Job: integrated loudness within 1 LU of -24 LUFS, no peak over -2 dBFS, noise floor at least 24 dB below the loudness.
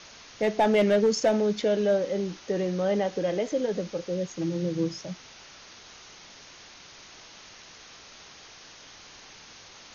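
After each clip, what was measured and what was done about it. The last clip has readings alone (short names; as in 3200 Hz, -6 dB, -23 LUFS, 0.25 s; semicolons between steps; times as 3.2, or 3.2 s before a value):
clipped 0.3%; flat tops at -15.5 dBFS; noise floor -49 dBFS; noise floor target -51 dBFS; loudness -26.5 LUFS; peak -15.5 dBFS; loudness target -24.0 LUFS
-> clip repair -15.5 dBFS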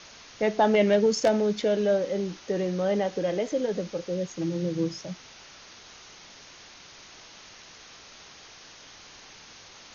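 clipped 0.0%; noise floor -49 dBFS; noise floor target -50 dBFS
-> denoiser 6 dB, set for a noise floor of -49 dBFS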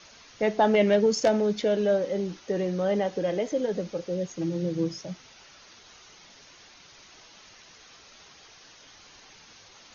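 noise floor -53 dBFS; loudness -26.0 LUFS; peak -8.0 dBFS; loudness target -24.0 LUFS
-> gain +2 dB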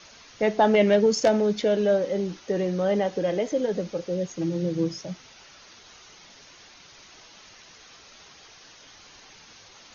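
loudness -24.0 LUFS; peak -6.0 dBFS; noise floor -51 dBFS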